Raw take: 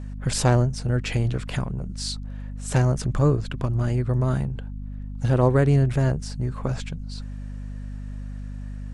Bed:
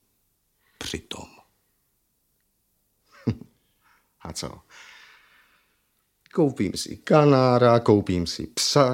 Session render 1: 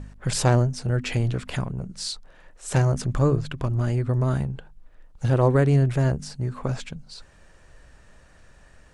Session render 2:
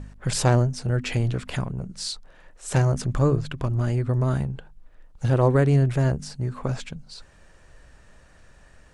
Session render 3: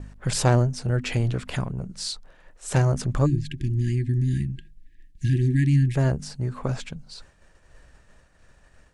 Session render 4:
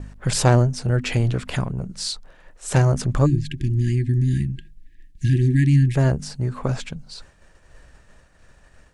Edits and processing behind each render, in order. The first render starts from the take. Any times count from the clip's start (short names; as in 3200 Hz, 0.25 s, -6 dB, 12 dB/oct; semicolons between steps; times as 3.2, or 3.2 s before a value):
de-hum 50 Hz, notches 5
nothing audible
3.26–5.95 spectral delete 370–1600 Hz; expander -46 dBFS
gain +3.5 dB